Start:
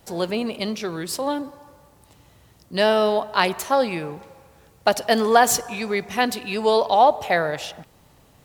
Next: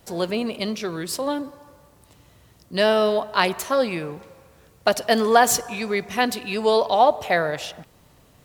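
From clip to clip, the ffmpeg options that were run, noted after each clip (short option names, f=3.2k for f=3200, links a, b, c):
-af "bandreject=f=830:w=12"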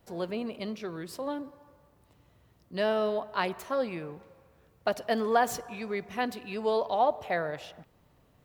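-af "equalizer=f=8.3k:t=o:w=2.4:g=-9.5,volume=-8.5dB"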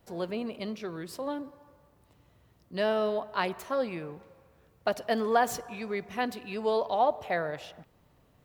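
-af anull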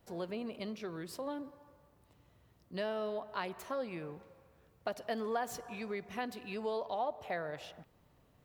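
-af "acompressor=threshold=-34dB:ratio=2,volume=-3.5dB"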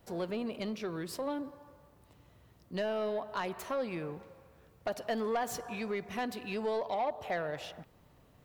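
-af "asoftclip=type=tanh:threshold=-30.5dB,volume=5dB"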